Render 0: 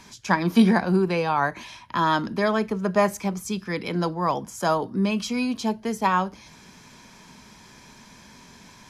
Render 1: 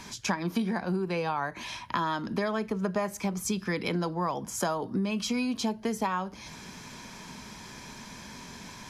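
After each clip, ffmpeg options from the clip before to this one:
ffmpeg -i in.wav -af "acompressor=threshold=-30dB:ratio=12,volume=4dB" out.wav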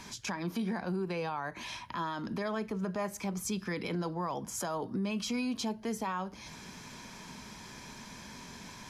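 ffmpeg -i in.wav -af "alimiter=limit=-23.5dB:level=0:latency=1:release=14,volume=-3dB" out.wav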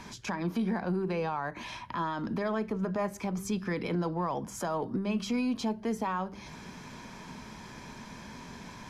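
ffmpeg -i in.wav -af "highshelf=frequency=2900:gain=-9.5,aeval=exprs='0.0473*(cos(1*acos(clip(val(0)/0.0473,-1,1)))-cos(1*PI/2))+0.000531*(cos(6*acos(clip(val(0)/0.0473,-1,1)))-cos(6*PI/2))':channel_layout=same,bandreject=frequency=97.68:width_type=h:width=4,bandreject=frequency=195.36:width_type=h:width=4,bandreject=frequency=293.04:width_type=h:width=4,bandreject=frequency=390.72:width_type=h:width=4,volume=4dB" out.wav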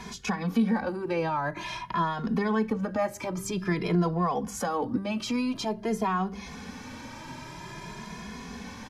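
ffmpeg -i in.wav -filter_complex "[0:a]asplit=2[link_01][link_02];[link_02]adelay=2.4,afreqshift=0.49[link_03];[link_01][link_03]amix=inputs=2:normalize=1,volume=7.5dB" out.wav

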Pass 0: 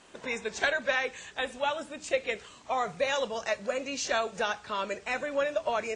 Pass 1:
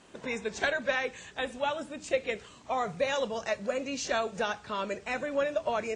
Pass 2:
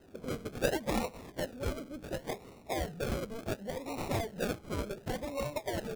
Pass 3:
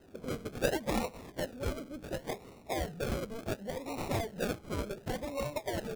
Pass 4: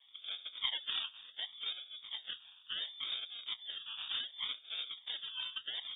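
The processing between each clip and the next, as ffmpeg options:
ffmpeg -i in.wav -af "equalizer=frequency=130:width=0.34:gain=7,volume=-2.5dB" out.wav
ffmpeg -i in.wav -filter_complex "[0:a]acrossover=split=750[link_01][link_02];[link_01]acompressor=threshold=-40dB:ratio=6[link_03];[link_02]acrusher=samples=38:mix=1:aa=0.000001:lfo=1:lforange=22.8:lforate=0.69[link_04];[link_03][link_04]amix=inputs=2:normalize=0" out.wav
ffmpeg -i in.wav -af anull out.wav
ffmpeg -i in.wav -af "lowpass=frequency=3100:width_type=q:width=0.5098,lowpass=frequency=3100:width_type=q:width=0.6013,lowpass=frequency=3100:width_type=q:width=0.9,lowpass=frequency=3100:width_type=q:width=2.563,afreqshift=-3700,volume=-6dB" out.wav

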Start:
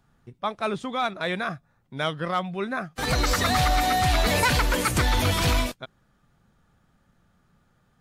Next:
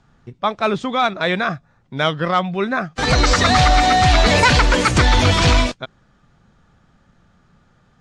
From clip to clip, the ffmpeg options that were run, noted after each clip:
ffmpeg -i in.wav -af "lowpass=frequency=7200:width=0.5412,lowpass=frequency=7200:width=1.3066,volume=8.5dB" out.wav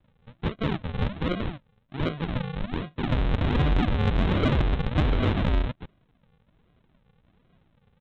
ffmpeg -i in.wav -af "aresample=8000,acrusher=samples=17:mix=1:aa=0.000001:lfo=1:lforange=17:lforate=1.3,aresample=44100,asoftclip=type=tanh:threshold=-5.5dB,volume=-8dB" out.wav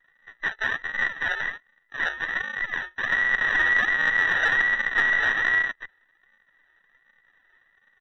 ffmpeg -i in.wav -af "afftfilt=real='real(if(between(b,1,1012),(2*floor((b-1)/92)+1)*92-b,b),0)':imag='imag(if(between(b,1,1012),(2*floor((b-1)/92)+1)*92-b,b),0)*if(between(b,1,1012),-1,1)':win_size=2048:overlap=0.75" out.wav

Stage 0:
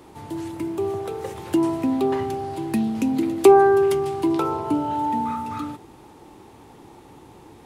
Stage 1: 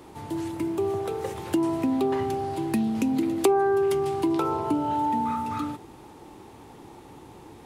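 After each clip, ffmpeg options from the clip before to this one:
ffmpeg -i in.wav -af "acompressor=threshold=-22dB:ratio=2.5" out.wav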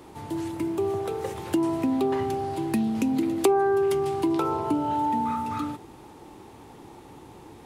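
ffmpeg -i in.wav -af anull out.wav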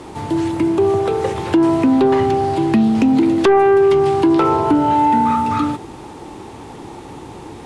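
ffmpeg -i in.wav -filter_complex "[0:a]acrossover=split=4700[link_01][link_02];[link_02]acompressor=threshold=-53dB:ratio=4:attack=1:release=60[link_03];[link_01][link_03]amix=inputs=2:normalize=0,lowpass=frequency=10000:width=0.5412,lowpass=frequency=10000:width=1.3066,aeval=exprs='0.355*sin(PI/2*2.24*val(0)/0.355)':channel_layout=same,volume=1.5dB" out.wav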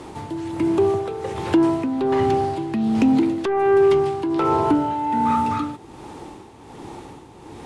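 ffmpeg -i in.wav -af "tremolo=f=1.3:d=0.62,volume=-2.5dB" out.wav

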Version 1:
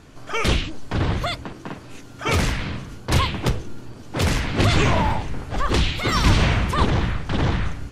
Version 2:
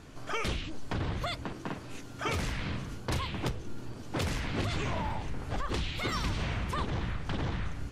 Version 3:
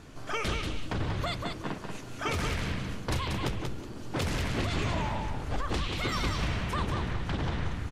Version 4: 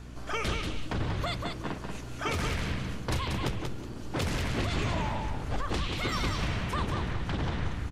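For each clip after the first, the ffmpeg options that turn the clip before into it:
ffmpeg -i in.wav -af "acompressor=threshold=-26dB:ratio=6,volume=-3.5dB" out.wav
ffmpeg -i in.wav -af "aecho=1:1:186|372|558:0.562|0.129|0.0297,volume=1dB" out.wav
ffmpeg -i in.wav -af "aeval=exprs='val(0)+0.00631*(sin(2*PI*60*n/s)+sin(2*PI*2*60*n/s)/2+sin(2*PI*3*60*n/s)/3+sin(2*PI*4*60*n/s)/4+sin(2*PI*5*60*n/s)/5)':channel_layout=same" out.wav

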